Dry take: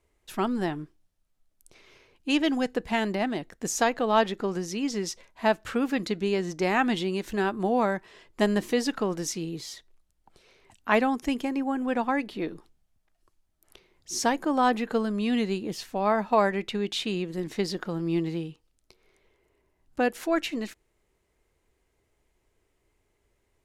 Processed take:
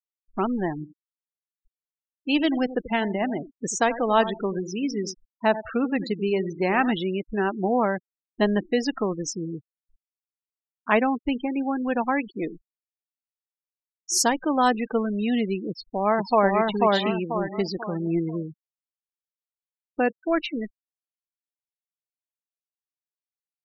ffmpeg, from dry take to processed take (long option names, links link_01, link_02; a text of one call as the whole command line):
ffmpeg -i in.wav -filter_complex "[0:a]asplit=3[link_01][link_02][link_03];[link_01]afade=type=out:start_time=0.78:duration=0.02[link_04];[link_02]asplit=2[link_05][link_06];[link_06]adelay=87,lowpass=frequency=3500:poles=1,volume=-13dB,asplit=2[link_07][link_08];[link_08]adelay=87,lowpass=frequency=3500:poles=1,volume=0.26,asplit=2[link_09][link_10];[link_10]adelay=87,lowpass=frequency=3500:poles=1,volume=0.26[link_11];[link_05][link_07][link_09][link_11]amix=inputs=4:normalize=0,afade=type=in:start_time=0.78:duration=0.02,afade=type=out:start_time=6.93:duration=0.02[link_12];[link_03]afade=type=in:start_time=6.93:duration=0.02[link_13];[link_04][link_12][link_13]amix=inputs=3:normalize=0,asettb=1/sr,asplit=3[link_14][link_15][link_16];[link_14]atrim=end=9.534[link_17];[link_15]atrim=start=9.53:end=10.91,asetpts=PTS-STARTPTS,afade=type=in:duration=0.004:curve=qsin,afade=type=out:start_time=1.376:duration=0.004:curve=qsin,lowpass=1600[link_18];[link_16]atrim=start=10.906[link_19];[link_17][link_18]acrossfade=duration=0.004:curve1=hsin:curve2=qsin[link_20];[link_20][link_19]acrossfade=duration=0.004:curve1=qsin:curve2=hsin,asettb=1/sr,asplit=3[link_21][link_22][link_23];[link_21]atrim=end=11.524[link_24];[link_22]atrim=start=11.52:end=14.72,asetpts=PTS-STARTPTS,afade=type=in:duration=0.004:curve=qsin,afade=type=out:start_time=3.196:duration=0.004:curve=qsin,aemphasis=mode=production:type=50kf[link_25];[link_23]atrim=start=14.716[link_26];[link_24][link_25]acrossfade=duration=0.004:curve1=hsin:curve2=qsin[link_27];[link_27][link_26]acrossfade=duration=0.004:curve1=qsin:curve2=hsin,asplit=2[link_28][link_29];[link_29]afade=type=in:start_time=15.69:duration=0.01,afade=type=out:start_time=16.62:duration=0.01,aecho=0:1:490|980|1470|1960|2450:0.891251|0.3565|0.1426|0.0570401|0.022816[link_30];[link_28][link_30]amix=inputs=2:normalize=0,afftfilt=real='re*gte(hypot(re,im),0.0355)':imag='im*gte(hypot(re,im),0.0355)':win_size=1024:overlap=0.75,volume=2dB" out.wav